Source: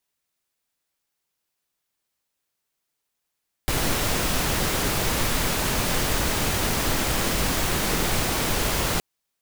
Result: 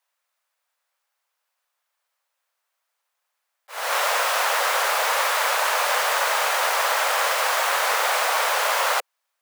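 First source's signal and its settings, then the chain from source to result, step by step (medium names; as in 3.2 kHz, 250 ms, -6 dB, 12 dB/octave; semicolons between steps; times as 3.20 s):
noise pink, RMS -23.5 dBFS 5.32 s
elliptic high-pass 520 Hz, stop band 70 dB; peaking EQ 1.1 kHz +9.5 dB 2.3 oct; slow attack 292 ms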